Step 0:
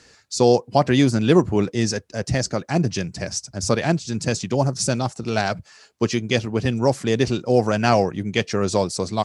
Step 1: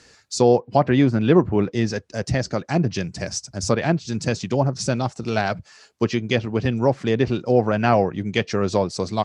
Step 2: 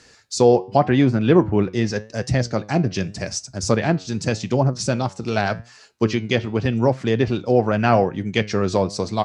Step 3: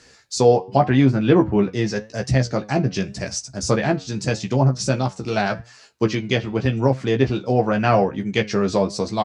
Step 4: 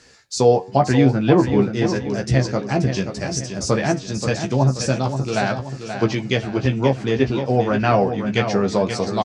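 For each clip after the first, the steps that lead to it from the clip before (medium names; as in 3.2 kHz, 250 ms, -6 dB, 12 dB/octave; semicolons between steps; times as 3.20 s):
low-pass that closes with the level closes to 2.4 kHz, closed at -14.5 dBFS
flange 0.86 Hz, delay 7.5 ms, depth 3.6 ms, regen +84%; trim +5.5 dB
doubling 15 ms -5 dB; trim -1 dB
feedback delay 530 ms, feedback 43%, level -8.5 dB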